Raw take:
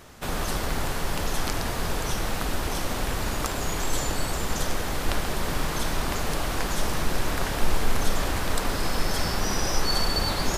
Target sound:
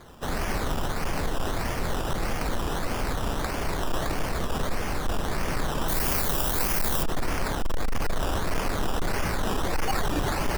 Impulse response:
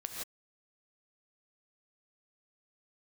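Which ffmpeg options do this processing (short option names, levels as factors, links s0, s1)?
-filter_complex "[0:a]acrusher=samples=16:mix=1:aa=0.000001:lfo=1:lforange=9.6:lforate=1.6,asoftclip=type=hard:threshold=0.1,asettb=1/sr,asplit=3[s0][s1][s2];[s0]atrim=end=5.884[s3];[s1]atrim=start=5.88:end=7.03,asetpts=PTS-STARTPTS,afade=t=in:d=0.004:c=qsin,afade=t=out:st=1.146:d=0.004:c=qsin,aemphasis=mode=production:type=50fm[s4];[s2]atrim=start=7.026[s5];[s3][s4]acrossfade=d=0.004:c1=hsin:c2=qsin[s6];[s6][s5]acrossfade=d=0.004:c1=qsin:c2=hsin"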